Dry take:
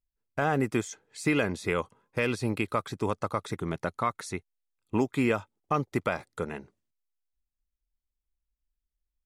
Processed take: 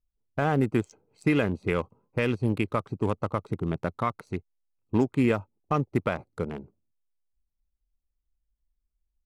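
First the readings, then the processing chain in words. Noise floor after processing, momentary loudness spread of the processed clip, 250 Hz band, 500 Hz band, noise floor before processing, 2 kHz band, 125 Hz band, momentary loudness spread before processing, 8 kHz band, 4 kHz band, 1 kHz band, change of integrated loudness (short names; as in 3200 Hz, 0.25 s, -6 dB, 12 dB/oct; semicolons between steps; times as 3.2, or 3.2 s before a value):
-81 dBFS, 10 LU, +3.5 dB, +1.5 dB, under -85 dBFS, -1.5 dB, +5.0 dB, 10 LU, under -10 dB, -2.0 dB, -0.5 dB, +2.0 dB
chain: Wiener smoothing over 25 samples; low shelf 300 Hz +6 dB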